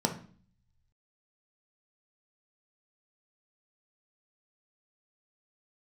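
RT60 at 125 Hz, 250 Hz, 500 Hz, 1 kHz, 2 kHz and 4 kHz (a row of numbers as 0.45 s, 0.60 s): 1.3 s, 0.75 s, 0.45 s, 0.45 s, 0.40 s, 0.45 s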